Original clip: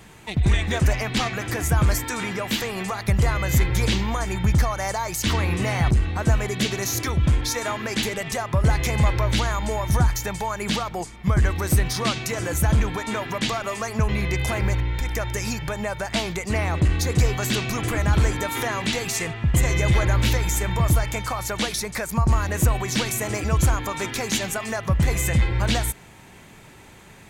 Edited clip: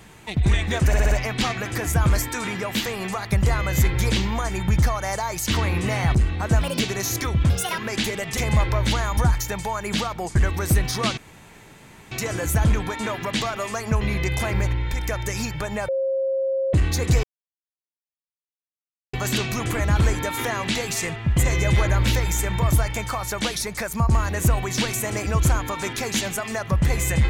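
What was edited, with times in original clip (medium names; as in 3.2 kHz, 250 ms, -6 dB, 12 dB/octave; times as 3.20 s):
0.87 s: stutter 0.06 s, 5 plays
6.37–6.62 s: speed 135%
7.32–7.77 s: speed 156%
8.36–8.84 s: delete
9.64–9.93 s: delete
11.11–11.37 s: delete
12.19 s: insert room tone 0.94 s
15.96–16.81 s: bleep 536 Hz -20 dBFS
17.31 s: insert silence 1.90 s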